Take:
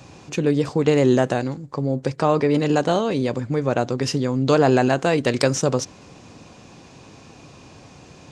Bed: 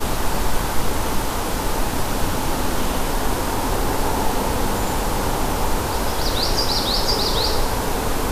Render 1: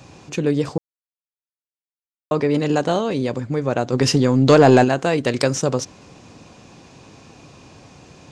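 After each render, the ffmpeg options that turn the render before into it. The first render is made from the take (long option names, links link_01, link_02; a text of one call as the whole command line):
ffmpeg -i in.wav -filter_complex "[0:a]asplit=3[link_01][link_02][link_03];[link_01]afade=type=out:start_time=3.92:duration=0.02[link_04];[link_02]acontrast=63,afade=type=in:start_time=3.92:duration=0.02,afade=type=out:start_time=4.83:duration=0.02[link_05];[link_03]afade=type=in:start_time=4.83:duration=0.02[link_06];[link_04][link_05][link_06]amix=inputs=3:normalize=0,asplit=3[link_07][link_08][link_09];[link_07]atrim=end=0.78,asetpts=PTS-STARTPTS,afade=type=out:start_time=0.776:duration=0.004:curve=hsin[link_10];[link_08]atrim=start=0.78:end=2.31,asetpts=PTS-STARTPTS,volume=0[link_11];[link_09]atrim=start=2.31,asetpts=PTS-STARTPTS,afade=type=in:duration=0.004:curve=hsin[link_12];[link_10][link_11][link_12]concat=n=3:v=0:a=1" out.wav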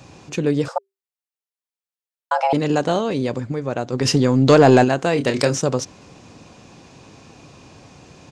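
ffmpeg -i in.wav -filter_complex "[0:a]asettb=1/sr,asplit=3[link_01][link_02][link_03];[link_01]atrim=end=0.684[link_04];[link_02]atrim=start=0.68:end=2.53,asetpts=PTS-STARTPTS,afade=type=in:duration=0.004:curve=qsin,afade=type=out:start_time=1.846:duration=0.004:curve=qsin,afreqshift=390[link_05];[link_03]atrim=start=2.526[link_06];[link_04][link_05]acrossfade=duration=0.004:curve1=hsin:curve2=qsin[link_07];[link_07][link_06]acrossfade=duration=0.004:curve1=qsin:curve2=hsin,asplit=3[link_08][link_09][link_10];[link_08]afade=type=out:start_time=5.15:duration=0.02[link_11];[link_09]asplit=2[link_12][link_13];[link_13]adelay=28,volume=-7dB[link_14];[link_12][link_14]amix=inputs=2:normalize=0,afade=type=in:start_time=5.15:duration=0.02,afade=type=out:start_time=5.55:duration=0.02[link_15];[link_10]afade=type=in:start_time=5.55:duration=0.02[link_16];[link_11][link_15][link_16]amix=inputs=3:normalize=0,asplit=3[link_17][link_18][link_19];[link_17]atrim=end=3.522[link_20];[link_18]atrim=start=3.518:end=4.052,asetpts=PTS-STARTPTS,volume=-3.5dB[link_21];[link_19]atrim=start=4.048[link_22];[link_20][link_21]acrossfade=duration=0.004:curve1=hsin:curve2=hsin[link_23];[link_23][link_22]acrossfade=duration=0.004:curve1=hsin:curve2=hsin" out.wav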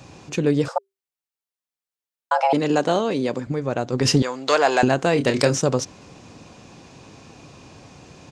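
ffmpeg -i in.wav -filter_complex "[0:a]asettb=1/sr,asplit=3[link_01][link_02][link_03];[link_01]atrim=end=2.454[link_04];[link_02]atrim=start=2.45:end=3.47,asetpts=PTS-STARTPTS,afade=type=in:duration=0.004:curve=qsin,afade=type=out:start_time=1.016:duration=0.004:curve=qsin,highpass=180[link_05];[link_03]atrim=start=3.466[link_06];[link_04][link_05]acrossfade=duration=0.004:curve1=hsin:curve2=qsin[link_07];[link_07][link_06]acrossfade=duration=0.004:curve1=qsin:curve2=hsin,asettb=1/sr,asplit=3[link_08][link_09][link_10];[link_08]atrim=end=4.224[link_11];[link_09]atrim=start=4.22:end=4.83,asetpts=PTS-STARTPTS,afade=type=in:duration=0.004:curve=qsin,afade=type=out:start_time=0.606:duration=0.004:curve=qsin,highpass=740[link_12];[link_10]atrim=start=4.826[link_13];[link_11][link_12]acrossfade=duration=0.004:curve1=hsin:curve2=qsin[link_14];[link_14][link_13]acrossfade=duration=0.004:curve1=qsin:curve2=hsin" out.wav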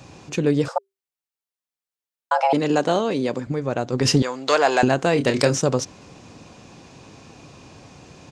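ffmpeg -i in.wav -af anull out.wav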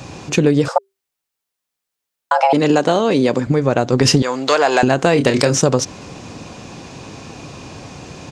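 ffmpeg -i in.wav -af "acompressor=threshold=-20dB:ratio=6,alimiter=level_in=10.5dB:limit=-1dB:release=50:level=0:latency=1" out.wav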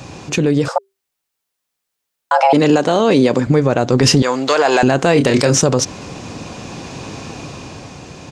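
ffmpeg -i in.wav -af "alimiter=limit=-6.5dB:level=0:latency=1:release=24,dynaudnorm=framelen=130:gausssize=13:maxgain=5dB" out.wav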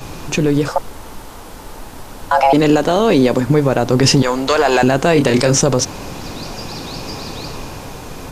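ffmpeg -i in.wav -i bed.wav -filter_complex "[1:a]volume=-11.5dB[link_01];[0:a][link_01]amix=inputs=2:normalize=0" out.wav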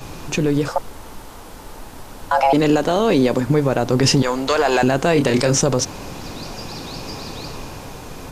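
ffmpeg -i in.wav -af "volume=-3.5dB" out.wav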